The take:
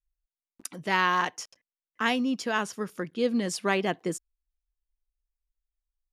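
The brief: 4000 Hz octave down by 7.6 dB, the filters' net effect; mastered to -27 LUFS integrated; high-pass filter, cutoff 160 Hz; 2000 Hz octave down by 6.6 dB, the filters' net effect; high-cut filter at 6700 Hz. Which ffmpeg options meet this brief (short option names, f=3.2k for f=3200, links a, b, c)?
-af "highpass=160,lowpass=6.7k,equalizer=f=2k:t=o:g=-7,equalizer=f=4k:t=o:g=-7.5,volume=3.5dB"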